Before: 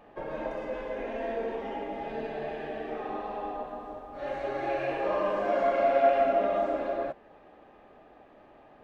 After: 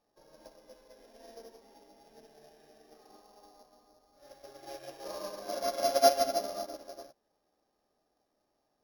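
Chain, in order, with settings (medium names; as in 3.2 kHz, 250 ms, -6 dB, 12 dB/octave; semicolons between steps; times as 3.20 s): sorted samples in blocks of 8 samples; upward expansion 2.5:1, over -35 dBFS; trim +1.5 dB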